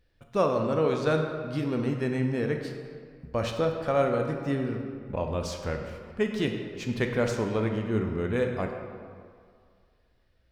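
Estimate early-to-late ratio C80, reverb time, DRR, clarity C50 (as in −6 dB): 6.0 dB, 2.1 s, 3.0 dB, 4.5 dB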